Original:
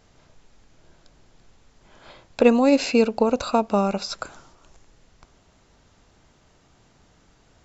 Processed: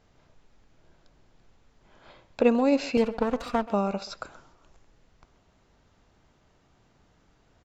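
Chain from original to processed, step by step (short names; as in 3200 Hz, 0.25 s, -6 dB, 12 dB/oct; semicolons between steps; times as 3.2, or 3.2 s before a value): 2.97–3.66 minimum comb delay 4.2 ms; LPF 3700 Hz 6 dB/oct; speakerphone echo 0.13 s, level -16 dB; gain -5 dB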